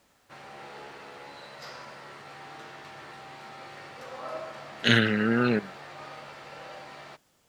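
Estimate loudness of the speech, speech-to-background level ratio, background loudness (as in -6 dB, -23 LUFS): -24.0 LUFS, 19.5 dB, -43.5 LUFS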